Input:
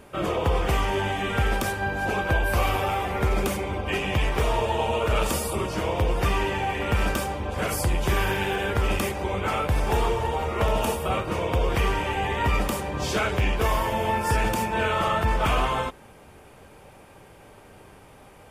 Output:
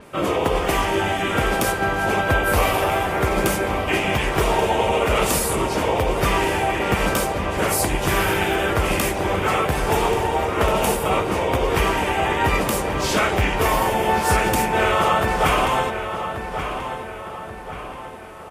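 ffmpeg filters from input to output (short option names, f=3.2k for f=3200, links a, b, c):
-filter_complex "[0:a]lowshelf=f=100:g=-9,asplit=2[a][b];[b]asetrate=37084,aresample=44100,atempo=1.18921,volume=-5dB[c];[a][c]amix=inputs=2:normalize=0,asplit=2[d][e];[e]adelay=1133,lowpass=f=4k:p=1,volume=-8.5dB,asplit=2[f][g];[g]adelay=1133,lowpass=f=4k:p=1,volume=0.48,asplit=2[h][i];[i]adelay=1133,lowpass=f=4k:p=1,volume=0.48,asplit=2[j][k];[k]adelay=1133,lowpass=f=4k:p=1,volume=0.48,asplit=2[l][m];[m]adelay=1133,lowpass=f=4k:p=1,volume=0.48[n];[d][f][h][j][l][n]amix=inputs=6:normalize=0,adynamicequalizer=threshold=0.00562:dfrequency=7000:dqfactor=0.7:tfrequency=7000:tqfactor=0.7:attack=5:release=100:ratio=0.375:range=2:mode=boostabove:tftype=highshelf,volume=4.5dB"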